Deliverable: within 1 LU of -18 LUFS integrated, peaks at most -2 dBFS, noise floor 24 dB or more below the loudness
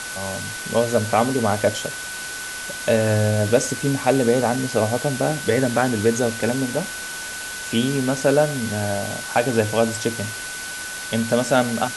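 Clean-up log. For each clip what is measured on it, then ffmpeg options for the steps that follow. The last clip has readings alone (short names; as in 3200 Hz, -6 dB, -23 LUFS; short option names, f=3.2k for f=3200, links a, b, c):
steady tone 1500 Hz; tone level -32 dBFS; noise floor -31 dBFS; noise floor target -46 dBFS; loudness -21.5 LUFS; peak -4.0 dBFS; loudness target -18.0 LUFS
-> -af "bandreject=f=1.5k:w=30"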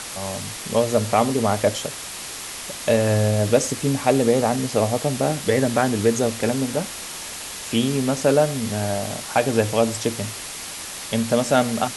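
steady tone none; noise floor -34 dBFS; noise floor target -46 dBFS
-> -af "afftdn=nr=12:nf=-34"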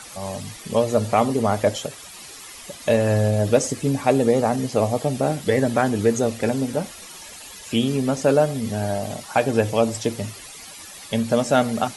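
noise floor -40 dBFS; noise floor target -46 dBFS
-> -af "afftdn=nr=6:nf=-40"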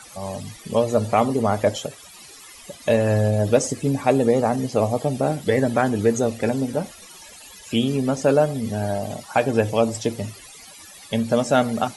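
noise floor -44 dBFS; noise floor target -46 dBFS
-> -af "afftdn=nr=6:nf=-44"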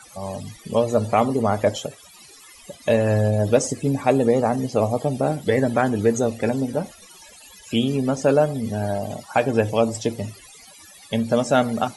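noise floor -47 dBFS; loudness -21.5 LUFS; peak -4.5 dBFS; loudness target -18.0 LUFS
-> -af "volume=3.5dB,alimiter=limit=-2dB:level=0:latency=1"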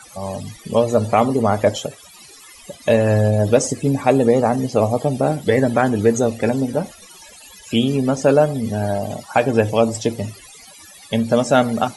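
loudness -18.0 LUFS; peak -2.0 dBFS; noise floor -44 dBFS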